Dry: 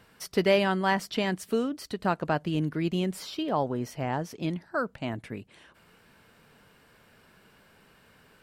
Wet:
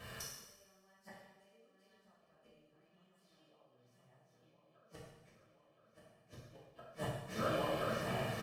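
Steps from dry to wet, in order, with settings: regenerating reverse delay 0.509 s, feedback 76%, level -9 dB; comb 1.7 ms, depth 57%; compressor 20:1, threshold -33 dBFS, peak gain reduction 19.5 dB; flipped gate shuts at -33 dBFS, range -41 dB; two-slope reverb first 0.94 s, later 3.1 s, from -25 dB, DRR -9 dB

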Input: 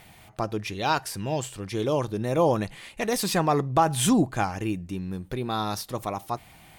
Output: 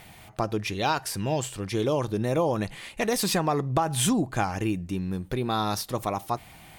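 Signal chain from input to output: compressor 6:1, threshold -23 dBFS, peak gain reduction 8 dB; gain +2.5 dB

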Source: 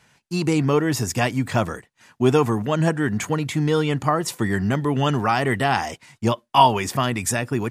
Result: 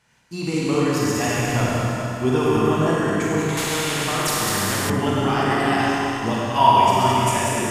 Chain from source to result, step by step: regenerating reverse delay 0.107 s, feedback 62%, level -3 dB; Schroeder reverb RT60 2.8 s, combs from 32 ms, DRR -5 dB; 3.57–4.9 spectral compressor 2:1; gain -7 dB

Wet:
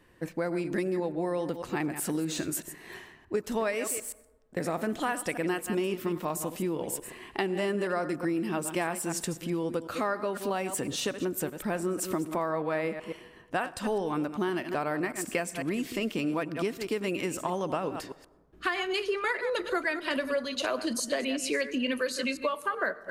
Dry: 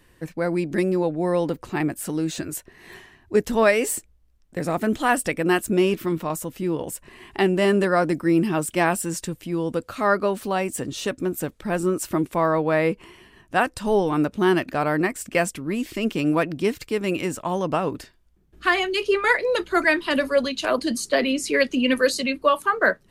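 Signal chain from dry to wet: reverse delay 0.125 s, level -12 dB; low shelf 120 Hz -9.5 dB; compressor, threshold -27 dBFS, peak gain reduction 13.5 dB; plate-style reverb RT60 1.2 s, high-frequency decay 0.4×, pre-delay 80 ms, DRR 19 dB; mismatched tape noise reduction decoder only

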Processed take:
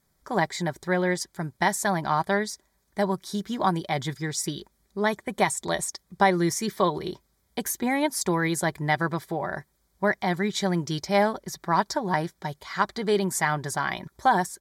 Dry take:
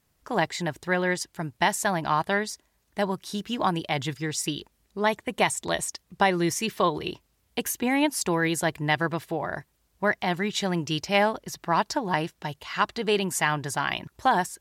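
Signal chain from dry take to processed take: bell 2800 Hz -14 dB 0.21 oct; notch 2700 Hz, Q 8.9; comb 5.2 ms, depth 33%

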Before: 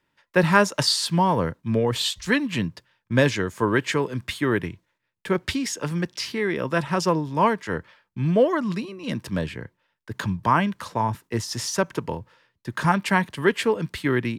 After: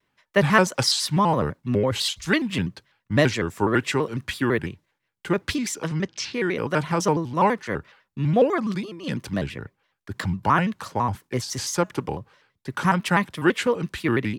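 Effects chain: 5.87–6.34 LPF 7000 Hz 24 dB/oct; shaped vibrato square 6 Hz, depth 160 cents

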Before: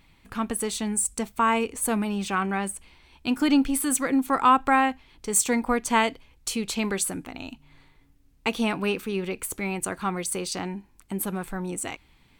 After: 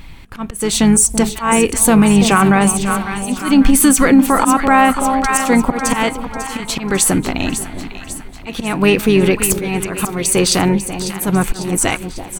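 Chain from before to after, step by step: low shelf 99 Hz +8.5 dB; auto swell 0.339 s; harmoniser -5 st -13 dB; split-band echo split 890 Hz, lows 0.334 s, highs 0.547 s, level -11 dB; maximiser +18 dB; gain -1 dB

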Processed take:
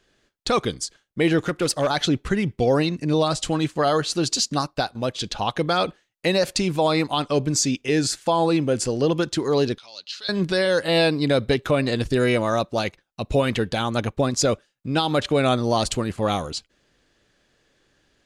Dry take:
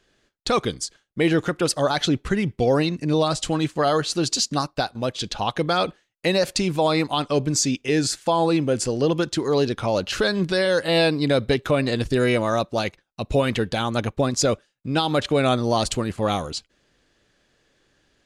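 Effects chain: 1.38–1.87 overloaded stage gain 15 dB; 9.78–10.29 band-pass 4300 Hz, Q 3.2

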